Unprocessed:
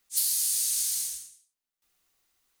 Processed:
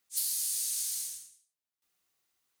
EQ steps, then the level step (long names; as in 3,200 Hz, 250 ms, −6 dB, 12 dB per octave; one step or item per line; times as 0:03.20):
high-pass filter 74 Hz 12 dB per octave
−5.5 dB